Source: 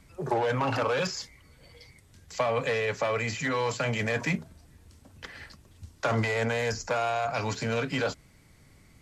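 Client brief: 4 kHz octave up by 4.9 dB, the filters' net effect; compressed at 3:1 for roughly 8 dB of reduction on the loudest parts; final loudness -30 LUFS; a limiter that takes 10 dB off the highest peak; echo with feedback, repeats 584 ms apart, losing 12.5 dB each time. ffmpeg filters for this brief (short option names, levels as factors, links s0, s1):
-af "equalizer=f=4000:t=o:g=6.5,acompressor=threshold=0.02:ratio=3,alimiter=level_in=1.78:limit=0.0631:level=0:latency=1,volume=0.562,aecho=1:1:584|1168|1752:0.237|0.0569|0.0137,volume=2.66"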